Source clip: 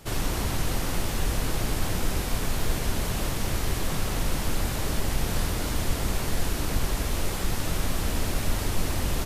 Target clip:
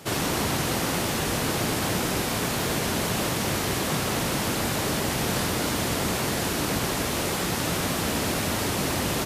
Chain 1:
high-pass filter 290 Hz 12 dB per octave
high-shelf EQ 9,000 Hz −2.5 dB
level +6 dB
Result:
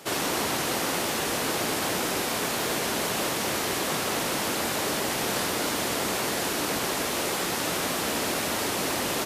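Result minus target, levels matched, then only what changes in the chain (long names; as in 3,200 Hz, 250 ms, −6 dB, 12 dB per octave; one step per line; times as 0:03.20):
125 Hz band −9.0 dB
change: high-pass filter 140 Hz 12 dB per octave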